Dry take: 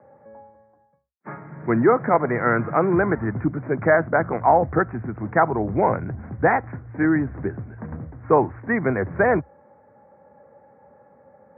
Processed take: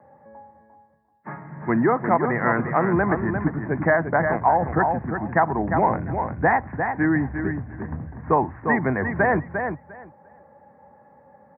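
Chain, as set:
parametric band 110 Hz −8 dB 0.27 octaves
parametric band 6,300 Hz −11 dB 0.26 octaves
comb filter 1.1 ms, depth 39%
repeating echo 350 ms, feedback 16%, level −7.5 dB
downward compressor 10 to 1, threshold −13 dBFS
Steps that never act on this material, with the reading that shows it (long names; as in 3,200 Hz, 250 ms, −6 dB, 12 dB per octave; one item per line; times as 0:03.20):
parametric band 6,300 Hz: nothing at its input above 2,300 Hz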